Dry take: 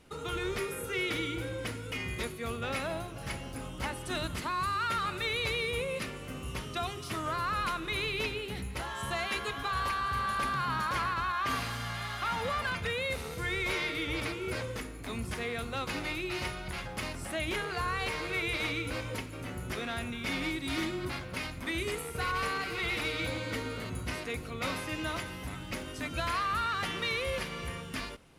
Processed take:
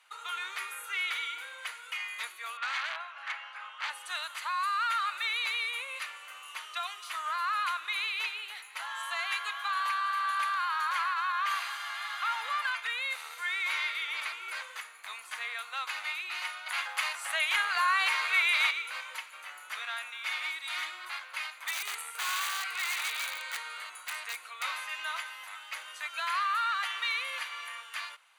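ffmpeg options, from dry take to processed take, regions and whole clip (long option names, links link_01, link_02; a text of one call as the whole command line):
ffmpeg -i in.wav -filter_complex "[0:a]asettb=1/sr,asplit=3[link_01][link_02][link_03];[link_01]atrim=end=2.574[link_04];[link_02]atrim=start=2.57:end=3.9,asetpts=PTS-STARTPTS,afade=type=in:duration=0.004:curve=qsin,afade=type=out:start_time=1.326:duration=0.004:curve=qsin,equalizer=frequency=1500:width=0.79:gain=6,aeval=exprs='(mod(15.8*val(0)+1,2)-1)/15.8':channel_layout=same,highpass=650,lowpass=3300[link_05];[link_03]atrim=start=3.896[link_06];[link_04][link_05]acrossfade=duration=0.004:curve1=hsin:curve2=qsin[link_07];[link_07][link_06]acrossfade=duration=0.004:curve1=qsin:curve2=hsin,asettb=1/sr,asplit=3[link_08][link_09][link_10];[link_08]atrim=end=16.664[link_11];[link_09]atrim=start=16.66:end=18.71,asetpts=PTS-STARTPTS,afade=type=in:duration=0.004:curve=qsin,afade=type=out:start_time=2.046:duration=0.004:curve=qsin,highpass=frequency=410:width=0.5412,highpass=frequency=410:width=1.3066,acontrast=55[link_12];[link_10]atrim=start=18.706[link_13];[link_11][link_12]acrossfade=duration=0.004:curve1=hsin:curve2=qsin[link_14];[link_14][link_13]acrossfade=duration=0.004:curve1=qsin:curve2=hsin,asettb=1/sr,asplit=3[link_15][link_16][link_17];[link_15]atrim=end=21.674[link_18];[link_16]atrim=start=21.67:end=24.63,asetpts=PTS-STARTPTS,afade=type=in:duration=0.004:curve=qsin,afade=type=out:start_time=2.956:duration=0.004:curve=qsin,equalizer=frequency=8700:width_type=o:width=0.31:gain=6,aeval=exprs='(mod(20*val(0)+1,2)-1)/20':channel_layout=same[link_19];[link_17]atrim=start=24.626[link_20];[link_18][link_19]acrossfade=duration=0.004:curve1=hsin:curve2=qsin[link_21];[link_21][link_20]acrossfade=duration=0.004:curve1=qsin:curve2=hsin,highpass=frequency=990:width=0.5412,highpass=frequency=990:width=1.3066,highshelf=frequency=5100:gain=-5.5,bandreject=frequency=5300:width=6.3,volume=3dB" out.wav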